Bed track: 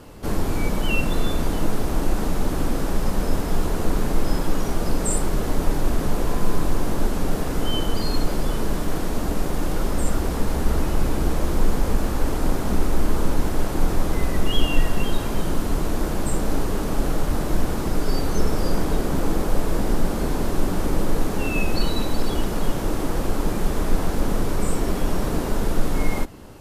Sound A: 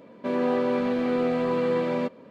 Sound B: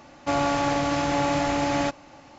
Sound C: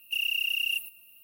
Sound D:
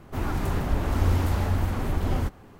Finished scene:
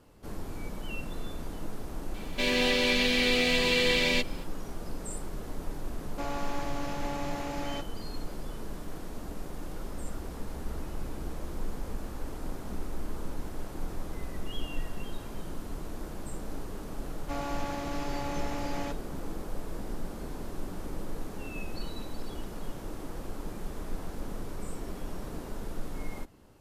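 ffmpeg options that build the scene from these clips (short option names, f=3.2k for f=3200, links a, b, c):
-filter_complex "[2:a]asplit=2[a][b];[0:a]volume=-15.5dB[c];[1:a]aexciter=amount=15:drive=4.6:freq=2k,atrim=end=2.3,asetpts=PTS-STARTPTS,volume=-5dB,afade=t=in:d=0.004:c=hsin,afade=t=out:st=2.296:d=0.004:c=hsin,adelay=2140[d];[a]atrim=end=2.38,asetpts=PTS-STARTPTS,volume=-12.5dB,afade=t=in:d=0.004:c=hsin,afade=t=out:st=2.376:d=0.004:c=hsin,adelay=5910[e];[b]atrim=end=2.38,asetpts=PTS-STARTPTS,volume=-12.5dB,afade=t=in:d=0.004:c=hsin,afade=t=out:st=2.376:d=0.004:c=hsin,adelay=17020[f];[c][d][e][f]amix=inputs=4:normalize=0"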